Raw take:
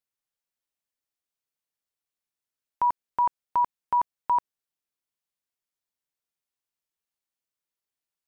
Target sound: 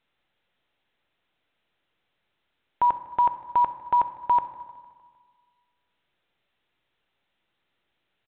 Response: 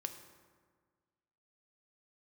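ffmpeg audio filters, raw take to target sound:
-filter_complex "[0:a]alimiter=limit=0.0841:level=0:latency=1,bandreject=f=1100:w=5.4,aecho=1:1:153|306|459|612|765:0.0794|0.0477|0.0286|0.0172|0.0103,asplit=2[s0][s1];[1:a]atrim=start_sample=2205[s2];[s1][s2]afir=irnorm=-1:irlink=0,volume=2.11[s3];[s0][s3]amix=inputs=2:normalize=0" -ar 8000 -c:a pcm_mulaw

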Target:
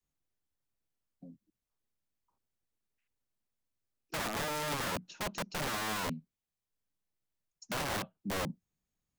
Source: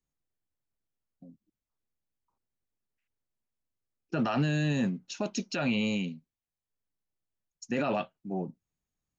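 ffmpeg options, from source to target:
-filter_complex "[0:a]acrossover=split=120|770|1600[s0][s1][s2][s3];[s3]acompressor=threshold=0.00251:ratio=6[s4];[s0][s1][s2][s4]amix=inputs=4:normalize=0,adynamicequalizer=threshold=0.00794:dfrequency=190:dqfactor=2.1:tfrequency=190:tqfactor=2.1:attack=5:release=100:ratio=0.375:range=3:mode=boostabove:tftype=bell,acrossover=split=230|3000[s5][s6][s7];[s6]acompressor=threshold=0.0141:ratio=3[s8];[s5][s8][s7]amix=inputs=3:normalize=0,aeval=exprs='(mod(31.6*val(0)+1,2)-1)/31.6':c=same"

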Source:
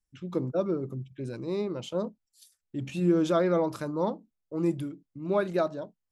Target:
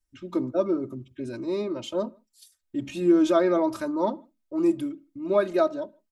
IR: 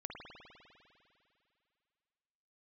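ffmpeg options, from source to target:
-filter_complex "[0:a]aecho=1:1:3.2:0.9,asplit=2[s0][s1];[1:a]atrim=start_sample=2205,afade=t=out:st=0.24:d=0.01,atrim=end_sample=11025[s2];[s1][s2]afir=irnorm=-1:irlink=0,volume=0.112[s3];[s0][s3]amix=inputs=2:normalize=0"

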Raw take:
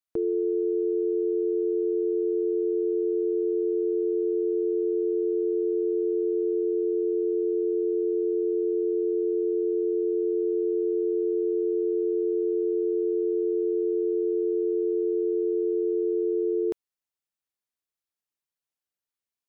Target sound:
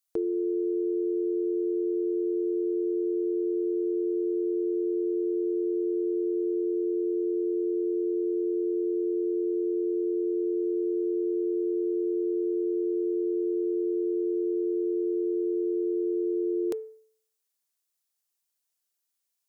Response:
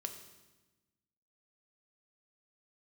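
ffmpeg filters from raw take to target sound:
-af "bass=f=250:g=-8,treble=f=4000:g=10,bandreject=f=438.9:t=h:w=4,bandreject=f=877.8:t=h:w=4,bandreject=f=1316.7:t=h:w=4,bandreject=f=1755.6:t=h:w=4,bandreject=f=2194.5:t=h:w=4,volume=1.19"

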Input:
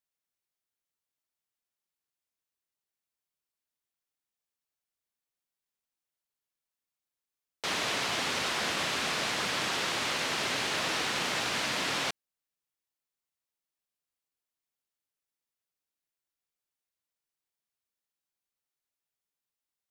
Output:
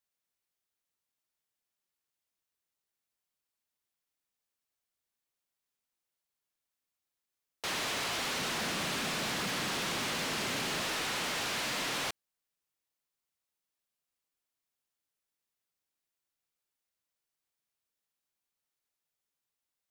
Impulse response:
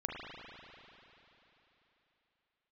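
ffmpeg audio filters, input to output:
-filter_complex "[0:a]asettb=1/sr,asplit=3[s0][s1][s2];[s0]atrim=end=8.394[s3];[s1]atrim=start=8.39:end=10.83,asetpts=PTS-STARTPTS,afade=t=in:d=0.004:c=qsin,afade=t=out:st=2.436:d=0.004:c=qsin,equalizer=f=190:t=o:w=1.5:g=8[s4];[s2]atrim=start=10.826[s5];[s3][s4]acrossfade=d=0.004:c1=hsin:c2=qsin[s6];[s6][s5]acrossfade=d=0.004:c1=qsin:c2=hsin,volume=50.1,asoftclip=hard,volume=0.02,volume=1.19"

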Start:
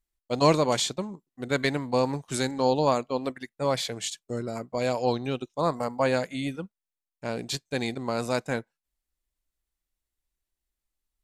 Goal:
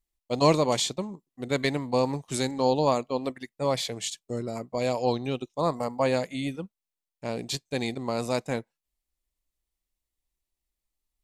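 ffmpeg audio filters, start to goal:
-af "equalizer=f=1500:t=o:w=0.36:g=-8"

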